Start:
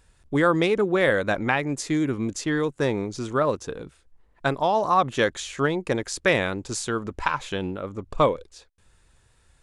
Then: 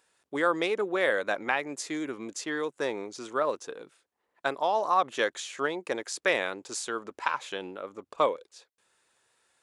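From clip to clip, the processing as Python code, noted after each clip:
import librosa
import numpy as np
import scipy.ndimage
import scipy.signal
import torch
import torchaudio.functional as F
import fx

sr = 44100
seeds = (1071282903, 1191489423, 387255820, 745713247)

y = scipy.signal.sosfilt(scipy.signal.butter(2, 400.0, 'highpass', fs=sr, output='sos'), x)
y = y * librosa.db_to_amplitude(-4.0)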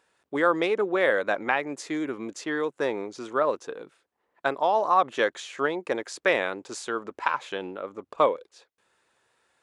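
y = fx.high_shelf(x, sr, hz=4100.0, db=-10.5)
y = y * librosa.db_to_amplitude(4.0)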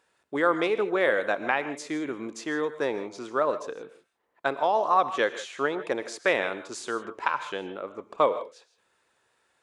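y = fx.rev_gated(x, sr, seeds[0], gate_ms=180, shape='rising', drr_db=12.0)
y = y * librosa.db_to_amplitude(-1.0)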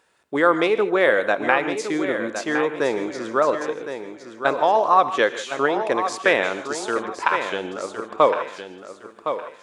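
y = fx.echo_feedback(x, sr, ms=1062, feedback_pct=27, wet_db=-9.0)
y = y * librosa.db_to_amplitude(6.0)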